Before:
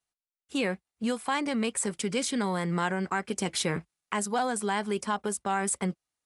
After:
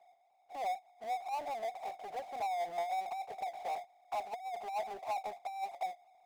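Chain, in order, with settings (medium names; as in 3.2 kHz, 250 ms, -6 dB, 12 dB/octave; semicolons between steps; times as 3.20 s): Butterworth band-pass 730 Hz, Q 7.3; compressor with a negative ratio -43 dBFS, ratio -0.5; power-law waveshaper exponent 0.5; trim +2 dB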